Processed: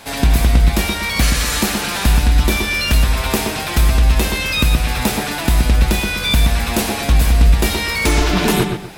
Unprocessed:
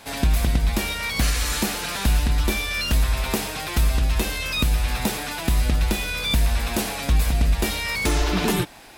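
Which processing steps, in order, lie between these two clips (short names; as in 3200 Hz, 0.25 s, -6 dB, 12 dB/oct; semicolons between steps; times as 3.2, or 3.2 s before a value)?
darkening echo 0.124 s, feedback 30%, low-pass 3100 Hz, level -4.5 dB; gain +6 dB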